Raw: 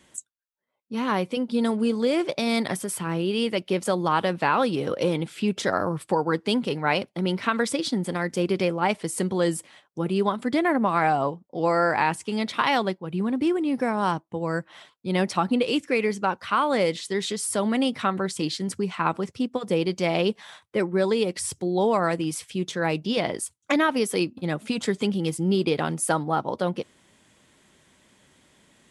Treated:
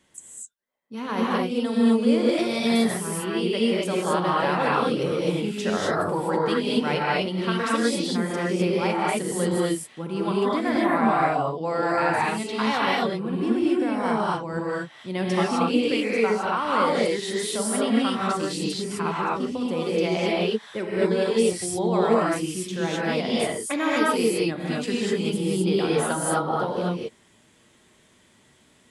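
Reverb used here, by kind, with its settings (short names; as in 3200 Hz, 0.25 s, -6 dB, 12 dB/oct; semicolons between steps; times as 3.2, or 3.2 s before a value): non-linear reverb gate 0.28 s rising, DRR -6 dB; gain -6 dB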